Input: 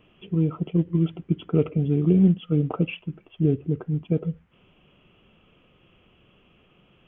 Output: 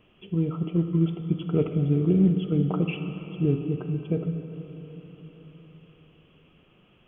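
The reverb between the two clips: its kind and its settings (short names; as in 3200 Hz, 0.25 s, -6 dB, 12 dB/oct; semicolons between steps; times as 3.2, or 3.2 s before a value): plate-style reverb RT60 4.3 s, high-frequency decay 0.95×, DRR 6 dB; gain -2 dB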